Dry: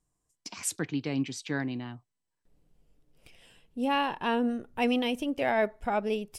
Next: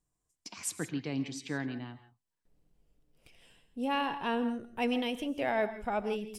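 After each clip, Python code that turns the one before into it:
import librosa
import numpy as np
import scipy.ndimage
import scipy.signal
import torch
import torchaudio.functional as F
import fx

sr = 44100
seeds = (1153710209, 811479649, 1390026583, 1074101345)

y = fx.rev_gated(x, sr, seeds[0], gate_ms=190, shape='rising', drr_db=12.0)
y = y * 10.0 ** (-4.0 / 20.0)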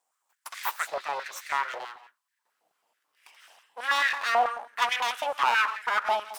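y = fx.spec_repair(x, sr, seeds[1], start_s=0.69, length_s=0.86, low_hz=2400.0, high_hz=5600.0, source='after')
y = np.abs(y)
y = fx.filter_held_highpass(y, sr, hz=9.2, low_hz=750.0, high_hz=1800.0)
y = y * 10.0 ** (7.5 / 20.0)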